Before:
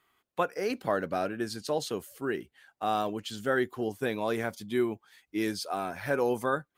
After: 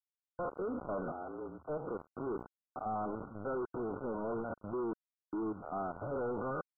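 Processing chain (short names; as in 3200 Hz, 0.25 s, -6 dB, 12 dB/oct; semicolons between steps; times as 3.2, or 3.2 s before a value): stepped spectrum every 0.1 s; companded quantiser 2-bit; 1.12–1.69 frequency shift +72 Hz; limiter -28 dBFS, peak gain reduction 11 dB; brick-wall FIR low-pass 1500 Hz; gain -6 dB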